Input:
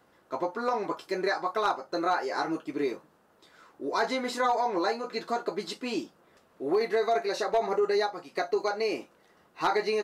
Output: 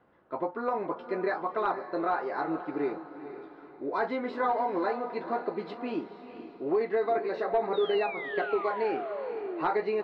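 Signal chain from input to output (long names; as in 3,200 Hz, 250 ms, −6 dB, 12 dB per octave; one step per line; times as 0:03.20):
high-shelf EQ 5,300 Hz −8 dB
sound drawn into the spectrogram fall, 0:07.73–0:09.64, 310–3,900 Hz −35 dBFS
high-frequency loss of the air 390 metres
feedback delay with all-pass diffusion 478 ms, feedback 40%, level −11 dB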